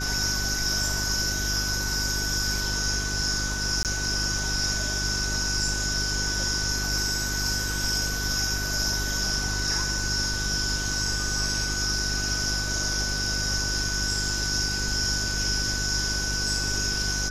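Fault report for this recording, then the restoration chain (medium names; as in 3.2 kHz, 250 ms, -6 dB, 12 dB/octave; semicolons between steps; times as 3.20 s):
hum 50 Hz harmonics 8 -32 dBFS
whine 1.5 kHz -32 dBFS
3.83–3.85 s: dropout 18 ms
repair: band-stop 1.5 kHz, Q 30; de-hum 50 Hz, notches 8; interpolate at 3.83 s, 18 ms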